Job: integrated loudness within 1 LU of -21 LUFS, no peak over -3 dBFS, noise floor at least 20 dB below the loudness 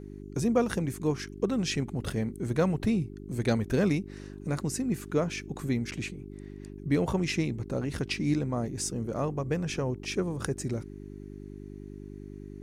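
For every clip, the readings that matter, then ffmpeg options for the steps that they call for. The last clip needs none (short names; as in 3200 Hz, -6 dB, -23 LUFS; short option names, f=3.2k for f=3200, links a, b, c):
hum 50 Hz; harmonics up to 400 Hz; hum level -41 dBFS; loudness -30.5 LUFS; peak -13.0 dBFS; loudness target -21.0 LUFS
-> -af "bandreject=f=50:t=h:w=4,bandreject=f=100:t=h:w=4,bandreject=f=150:t=h:w=4,bandreject=f=200:t=h:w=4,bandreject=f=250:t=h:w=4,bandreject=f=300:t=h:w=4,bandreject=f=350:t=h:w=4,bandreject=f=400:t=h:w=4"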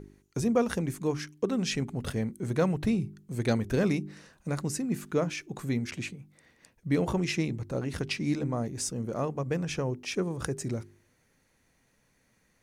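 hum none; loudness -31.0 LUFS; peak -13.5 dBFS; loudness target -21.0 LUFS
-> -af "volume=10dB"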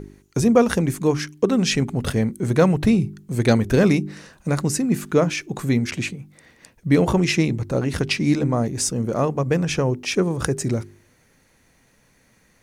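loudness -21.0 LUFS; peak -3.5 dBFS; noise floor -60 dBFS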